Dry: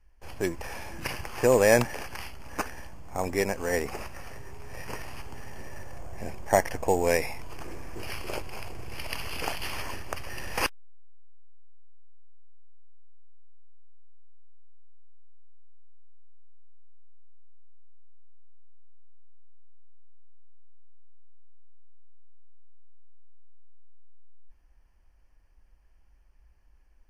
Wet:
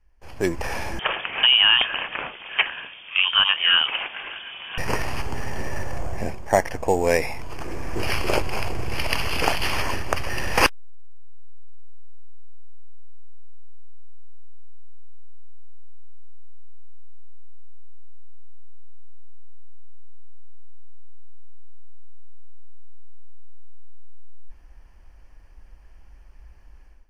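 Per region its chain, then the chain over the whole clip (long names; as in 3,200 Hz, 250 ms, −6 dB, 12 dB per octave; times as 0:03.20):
0:00.99–0:04.78: high-pass filter 230 Hz + downward compressor, threshold −22 dBFS + voice inversion scrambler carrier 3,400 Hz
whole clip: high-shelf EQ 8,600 Hz −8 dB; automatic gain control gain up to 14 dB; level −1 dB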